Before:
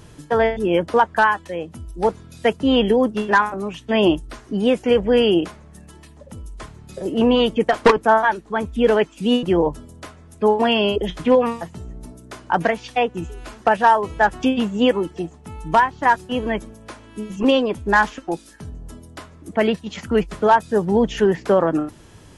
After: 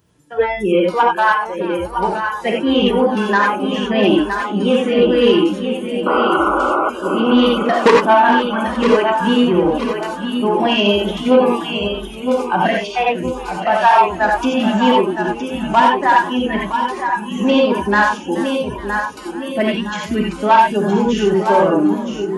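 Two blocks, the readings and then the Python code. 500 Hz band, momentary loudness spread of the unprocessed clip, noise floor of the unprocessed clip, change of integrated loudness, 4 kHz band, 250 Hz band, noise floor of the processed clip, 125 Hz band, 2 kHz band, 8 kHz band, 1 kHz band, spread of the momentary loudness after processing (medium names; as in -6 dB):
+3.0 dB, 15 LU, -46 dBFS, +3.5 dB, +5.0 dB, +5.0 dB, -29 dBFS, +3.5 dB, +4.0 dB, no reading, +5.5 dB, 9 LU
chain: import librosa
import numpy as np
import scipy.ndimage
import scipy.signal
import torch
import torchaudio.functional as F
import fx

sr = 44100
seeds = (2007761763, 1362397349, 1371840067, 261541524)

p1 = fx.level_steps(x, sr, step_db=12)
p2 = x + (p1 * librosa.db_to_amplitude(0.0))
p3 = fx.rev_gated(p2, sr, seeds[0], gate_ms=110, shape='rising', drr_db=-0.5)
p4 = fx.spec_paint(p3, sr, seeds[1], shape='noise', start_s=6.06, length_s=0.84, low_hz=290.0, high_hz=1500.0, level_db=-13.0)
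p5 = p4 + fx.echo_feedback(p4, sr, ms=966, feedback_pct=48, wet_db=-7.0, dry=0)
p6 = 10.0 ** (-1.5 / 20.0) * np.tanh(p5 / 10.0 ** (-1.5 / 20.0))
p7 = fx.noise_reduce_blind(p6, sr, reduce_db=19)
p8 = scipy.signal.sosfilt(scipy.signal.butter(2, 68.0, 'highpass', fs=sr, output='sos'), p7)
p9 = fx.echo_warbled(p8, sr, ms=427, feedback_pct=53, rate_hz=2.8, cents=144, wet_db=-17.5)
y = p9 * librosa.db_to_amplitude(-1.5)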